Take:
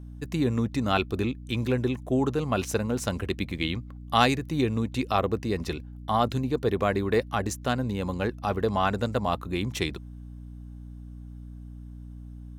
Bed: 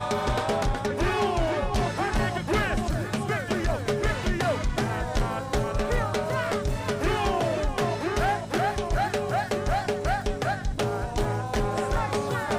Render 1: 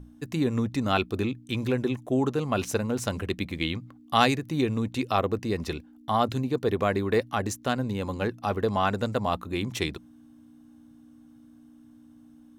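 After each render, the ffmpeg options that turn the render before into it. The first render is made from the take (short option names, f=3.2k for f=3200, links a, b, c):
-af "bandreject=f=60:t=h:w=6,bandreject=f=120:t=h:w=6,bandreject=f=180:t=h:w=6"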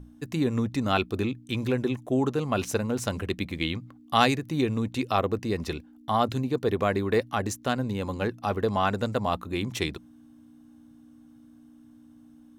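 -af anull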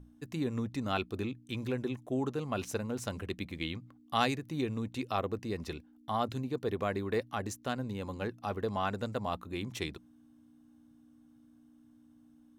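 -af "volume=-8dB"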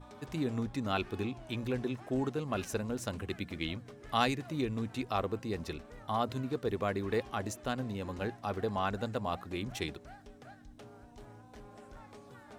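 -filter_complex "[1:a]volume=-26dB[a];[0:a][a]amix=inputs=2:normalize=0"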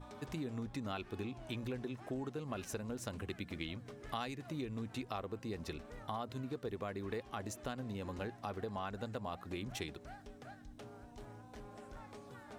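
-af "acompressor=threshold=-39dB:ratio=4"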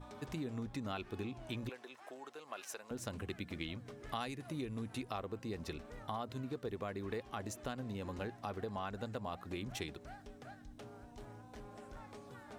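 -filter_complex "[0:a]asettb=1/sr,asplit=3[a][b][c];[a]atrim=end=1.694[d];[b]atrim=start=1.69:end=2.91,asetpts=PTS-STARTPTS,afade=t=in:d=0.004:c=qsin,afade=t=out:st=1.216:d=0.004:c=qsin,highpass=680[e];[c]atrim=start=2.906[f];[d][e]acrossfade=d=0.004:c1=hsin:c2=qsin[g];[g][f]acrossfade=d=0.004:c1=qsin:c2=hsin,asettb=1/sr,asplit=3[h][i][j];[h]atrim=end=4.204[k];[i]atrim=start=4.2:end=5.11,asetpts=PTS-STARTPTS,afade=t=in:d=0.004:c=qsin,afade=t=out:st=0.906:d=0.004:c=qsin,equalizer=f=10k:w=5.6:g=12[l];[j]atrim=start=5.106[m];[k][l]acrossfade=d=0.004:c1=hsin:c2=qsin[n];[n][m]acrossfade=d=0.004:c1=qsin:c2=hsin"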